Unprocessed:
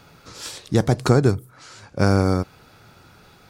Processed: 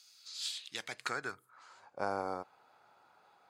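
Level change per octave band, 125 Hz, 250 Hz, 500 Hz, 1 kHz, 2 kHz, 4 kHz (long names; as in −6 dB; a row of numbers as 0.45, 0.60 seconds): −37.0, −28.0, −19.5, −11.0, −9.5, −6.5 decibels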